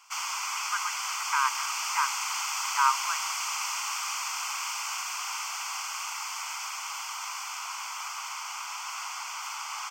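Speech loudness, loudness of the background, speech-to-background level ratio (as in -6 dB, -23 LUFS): -30.5 LUFS, -31.5 LUFS, 1.0 dB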